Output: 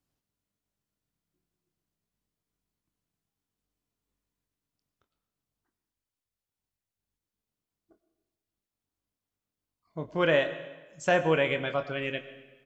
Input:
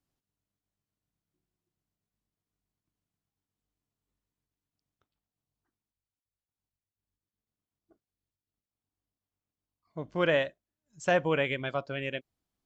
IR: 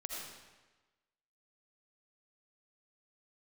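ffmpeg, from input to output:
-filter_complex "[0:a]asplit=2[a][b];[b]adelay=25,volume=-11.5dB[c];[a][c]amix=inputs=2:normalize=0,asplit=2[d][e];[1:a]atrim=start_sample=2205,adelay=27[f];[e][f]afir=irnorm=-1:irlink=0,volume=-10.5dB[g];[d][g]amix=inputs=2:normalize=0,volume=1.5dB"

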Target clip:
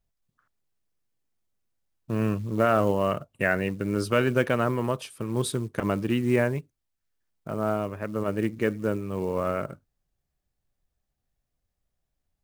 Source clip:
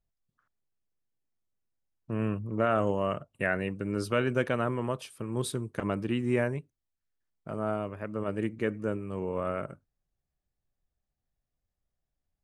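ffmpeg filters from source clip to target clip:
-af "acrusher=bits=7:mode=log:mix=0:aa=0.000001,volume=4.5dB"

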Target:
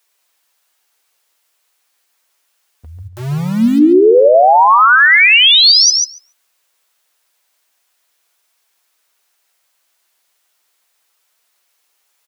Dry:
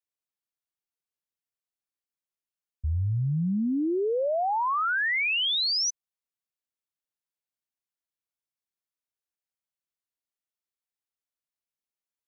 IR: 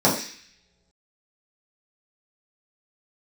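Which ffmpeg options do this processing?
-filter_complex "[0:a]highpass=570,acompressor=threshold=-30dB:ratio=6,flanger=delay=4.1:depth=8.4:regen=46:speed=0.35:shape=triangular,asplit=3[a][b][c];[a]afade=t=out:st=3.07:d=0.02[d];[b]aeval=exprs='val(0)*gte(abs(val(0)),0.0015)':c=same,afade=t=in:st=3.07:d=0.02,afade=t=out:st=3.78:d=0.02[e];[c]afade=t=in:st=3.78:d=0.02[f];[d][e][f]amix=inputs=3:normalize=0,asplit=2[g][h];[h]adelay=141,lowpass=f=3.2k:p=1,volume=-5.5dB,asplit=2[i][j];[j]adelay=141,lowpass=f=3.2k:p=1,volume=0.17,asplit=2[k][l];[l]adelay=141,lowpass=f=3.2k:p=1,volume=0.17[m];[g][i][k][m]amix=inputs=4:normalize=0,alimiter=level_in=34.5dB:limit=-1dB:release=50:level=0:latency=1,volume=-1dB"

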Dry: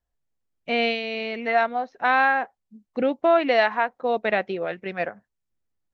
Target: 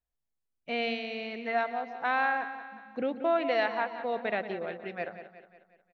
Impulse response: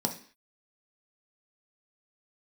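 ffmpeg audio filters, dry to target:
-filter_complex "[0:a]aecho=1:1:181|362|543|724|905:0.251|0.128|0.0653|0.0333|0.017,asplit=2[a][b];[1:a]atrim=start_sample=2205,adelay=126[c];[b][c]afir=irnorm=-1:irlink=0,volume=-24dB[d];[a][d]amix=inputs=2:normalize=0,volume=-8.5dB"

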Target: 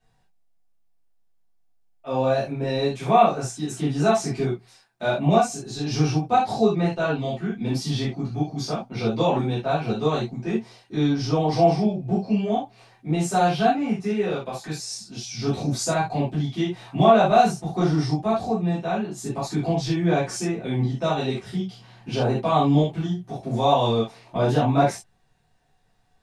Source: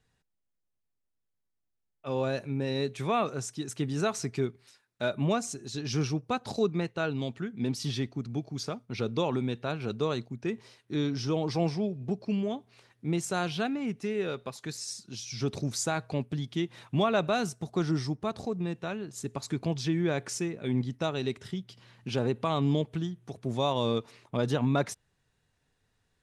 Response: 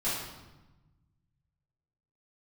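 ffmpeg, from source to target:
-filter_complex "[0:a]equalizer=f=750:t=o:w=0.35:g=11[a];[1:a]atrim=start_sample=2205,afade=t=out:st=0.14:d=0.01,atrim=end_sample=6615[b];[a][b]afir=irnorm=-1:irlink=0,volume=-1dB"

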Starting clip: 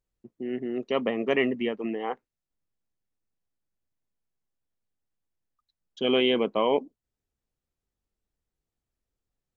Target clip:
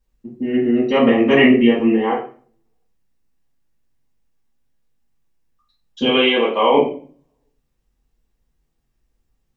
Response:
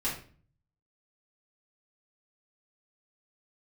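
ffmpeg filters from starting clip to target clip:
-filter_complex "[0:a]asplit=3[a][b][c];[a]afade=t=out:st=6.04:d=0.02[d];[b]highpass=490,afade=t=in:st=6.04:d=0.02,afade=t=out:st=6.72:d=0.02[e];[c]afade=t=in:st=6.72:d=0.02[f];[d][e][f]amix=inputs=3:normalize=0[g];[1:a]atrim=start_sample=2205[h];[g][h]afir=irnorm=-1:irlink=0,volume=6dB"

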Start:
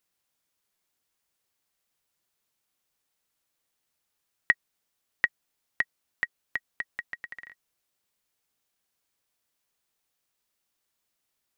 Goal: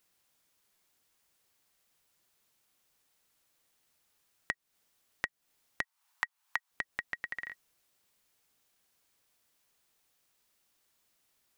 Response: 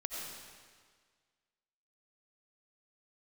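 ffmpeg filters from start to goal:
-filter_complex "[0:a]alimiter=limit=-13.5dB:level=0:latency=1,acompressor=threshold=-38dB:ratio=6,asettb=1/sr,asplit=3[a][b][c];[a]atrim=end=5.824[d];[b]atrim=start=5.82:end=6.71,asetpts=PTS-STARTPTS,afade=t=in:d=0.004:c=qsin,afade=t=out:st=0.886:d=0.004:c=qsin,lowshelf=f=620:t=q:w=3:g=-13.5[e];[c]atrim=start=6.706[f];[d][e]acrossfade=d=0.004:c1=hsin:c2=qsin[g];[g][f]acrossfade=d=0.004:c1=qsin:c2=hsin,volume=5.5dB"

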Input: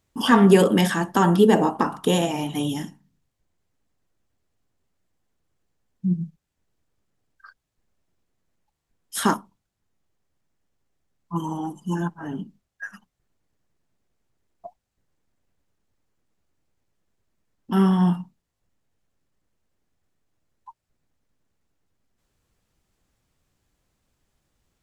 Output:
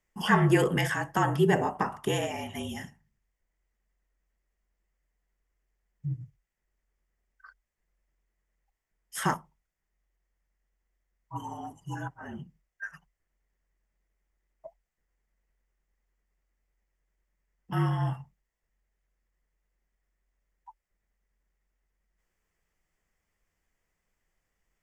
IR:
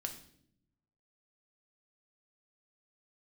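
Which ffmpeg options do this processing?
-af "equalizer=f=160:t=o:w=0.33:g=-9,equalizer=f=315:t=o:w=0.33:g=-8,equalizer=f=2k:t=o:w=0.33:g=10,equalizer=f=4k:t=o:w=0.33:g=-11,equalizer=f=10k:t=o:w=0.33:g=-4,afreqshift=-45,volume=-6dB"

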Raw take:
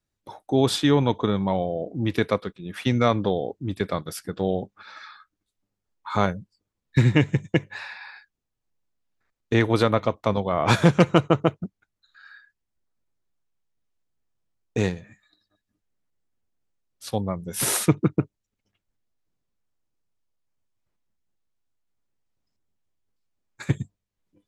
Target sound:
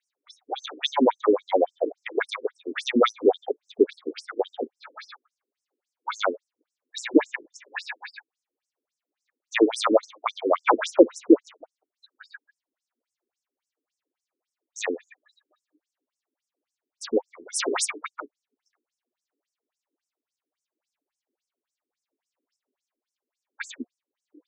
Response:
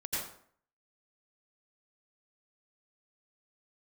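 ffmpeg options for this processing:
-af "acontrast=39,equalizer=f=94:t=o:w=1.9:g=11.5,afftfilt=real='re*between(b*sr/1024,320*pow(7400/320,0.5+0.5*sin(2*PI*3.6*pts/sr))/1.41,320*pow(7400/320,0.5+0.5*sin(2*PI*3.6*pts/sr))*1.41)':imag='im*between(b*sr/1024,320*pow(7400/320,0.5+0.5*sin(2*PI*3.6*pts/sr))/1.41,320*pow(7400/320,0.5+0.5*sin(2*PI*3.6*pts/sr))*1.41)':win_size=1024:overlap=0.75,volume=4dB"

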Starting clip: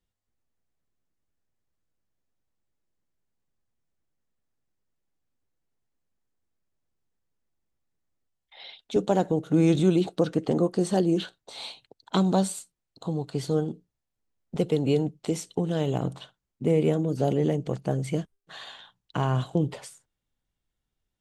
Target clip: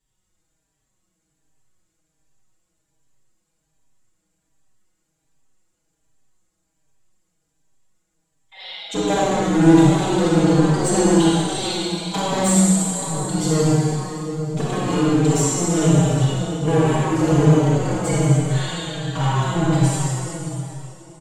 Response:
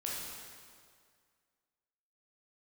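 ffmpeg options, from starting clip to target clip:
-filter_complex "[0:a]equalizer=f=7.4k:t=o:w=0.32:g=12.5,aecho=1:1:6.3:0.54,asplit=2[a][b];[b]acontrast=80,volume=1dB[c];[a][c]amix=inputs=2:normalize=0,asoftclip=type=tanh:threshold=-13.5dB,asplit=2[d][e];[e]adelay=536.4,volume=-17dB,highshelf=f=4k:g=-12.1[f];[d][f]amix=inputs=2:normalize=0[g];[1:a]atrim=start_sample=2205,asetrate=25578,aresample=44100[h];[g][h]afir=irnorm=-1:irlink=0,asplit=2[i][j];[j]adelay=4.7,afreqshift=-1.3[k];[i][k]amix=inputs=2:normalize=1,volume=-2dB"

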